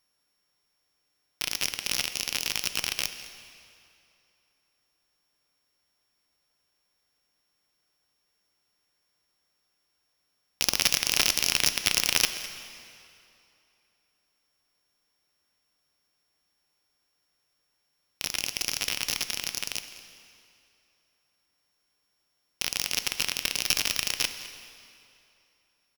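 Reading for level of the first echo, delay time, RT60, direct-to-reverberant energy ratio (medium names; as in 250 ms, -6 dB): -17.5 dB, 207 ms, 2.7 s, 9.0 dB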